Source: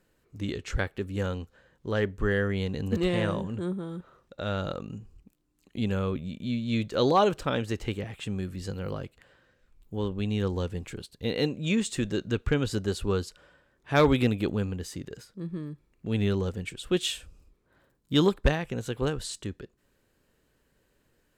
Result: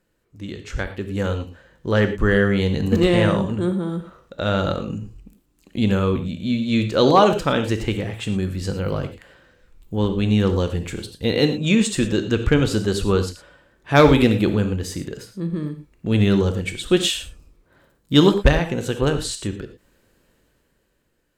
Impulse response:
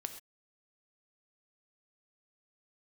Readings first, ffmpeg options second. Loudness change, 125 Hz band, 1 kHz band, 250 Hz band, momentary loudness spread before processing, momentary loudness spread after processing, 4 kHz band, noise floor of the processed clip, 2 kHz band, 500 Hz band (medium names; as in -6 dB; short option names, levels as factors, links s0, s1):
+9.0 dB, +9.0 dB, +8.5 dB, +9.5 dB, 15 LU, 16 LU, +9.0 dB, -66 dBFS, +8.5 dB, +8.5 dB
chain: -filter_complex "[0:a]dynaudnorm=f=130:g=17:m=3.55[s0];[1:a]atrim=start_sample=2205,afade=t=out:st=0.17:d=0.01,atrim=end_sample=7938[s1];[s0][s1]afir=irnorm=-1:irlink=0,volume=1.12"